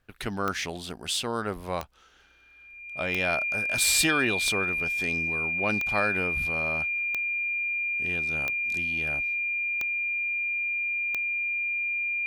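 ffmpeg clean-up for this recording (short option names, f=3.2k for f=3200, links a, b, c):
-af "adeclick=t=4,bandreject=f=2.4k:w=30"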